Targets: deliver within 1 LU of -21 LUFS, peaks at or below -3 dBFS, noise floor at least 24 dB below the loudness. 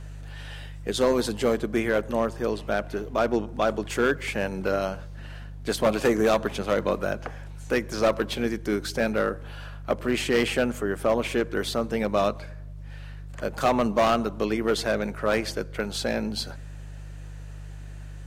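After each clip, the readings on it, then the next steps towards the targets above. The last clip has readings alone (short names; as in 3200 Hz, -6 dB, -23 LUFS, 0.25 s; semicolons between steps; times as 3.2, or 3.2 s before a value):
clipped 1.0%; flat tops at -15.0 dBFS; hum 50 Hz; harmonics up to 150 Hz; hum level -37 dBFS; loudness -26.0 LUFS; peak -15.0 dBFS; loudness target -21.0 LUFS
-> clip repair -15 dBFS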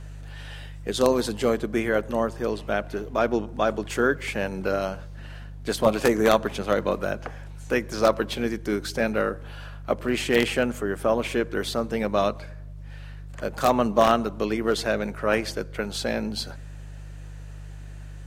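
clipped 0.0%; hum 50 Hz; harmonics up to 150 Hz; hum level -36 dBFS
-> de-hum 50 Hz, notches 3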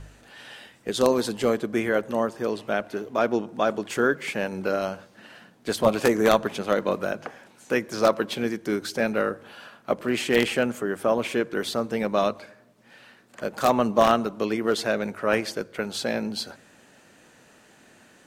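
hum none; loudness -25.5 LUFS; peak -5.5 dBFS; loudness target -21.0 LUFS
-> gain +4.5 dB; limiter -3 dBFS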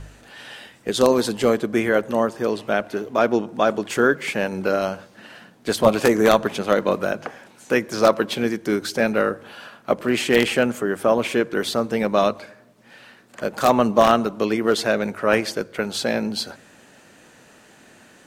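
loudness -21.0 LUFS; peak -3.0 dBFS; noise floor -51 dBFS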